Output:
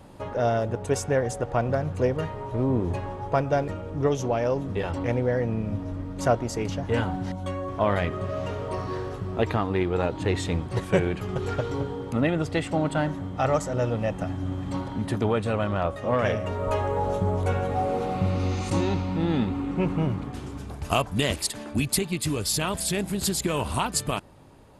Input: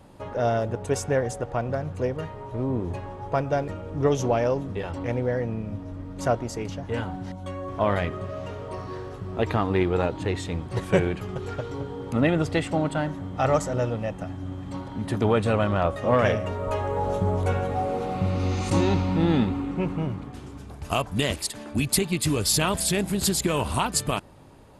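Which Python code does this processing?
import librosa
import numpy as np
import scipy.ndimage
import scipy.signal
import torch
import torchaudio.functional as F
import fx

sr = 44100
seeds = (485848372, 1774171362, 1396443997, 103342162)

y = fx.rider(x, sr, range_db=4, speed_s=0.5)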